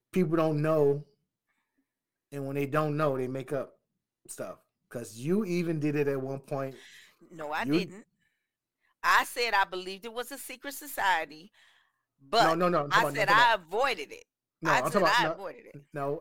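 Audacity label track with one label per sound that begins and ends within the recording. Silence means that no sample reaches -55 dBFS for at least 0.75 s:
2.320000	8.030000	sound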